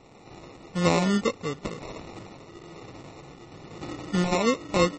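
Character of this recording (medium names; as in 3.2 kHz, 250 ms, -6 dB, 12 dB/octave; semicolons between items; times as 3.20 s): aliases and images of a low sample rate 1.6 kHz, jitter 0%; tremolo triangle 1.1 Hz, depth 35%; a quantiser's noise floor 10-bit, dither none; MP3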